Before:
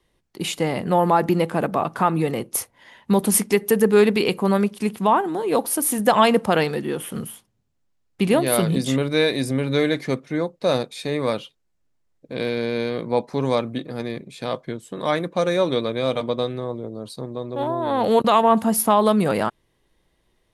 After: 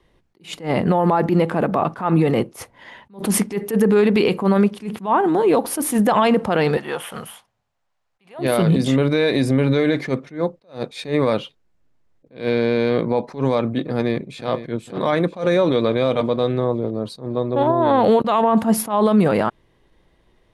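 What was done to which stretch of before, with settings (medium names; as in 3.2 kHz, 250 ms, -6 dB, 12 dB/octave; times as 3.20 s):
6.77–8.39 s: resonant low shelf 480 Hz -13 dB, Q 1.5
13.91–14.50 s: echo throw 480 ms, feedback 65%, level -12.5 dB
whole clip: low-pass 2.5 kHz 6 dB/octave; peak limiter -16.5 dBFS; attacks held to a fixed rise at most 190 dB/s; trim +8.5 dB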